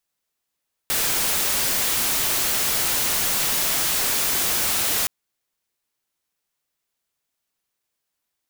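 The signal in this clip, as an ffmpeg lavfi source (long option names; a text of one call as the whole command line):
ffmpeg -f lavfi -i "anoisesrc=color=white:amplitude=0.138:duration=4.17:sample_rate=44100:seed=1" out.wav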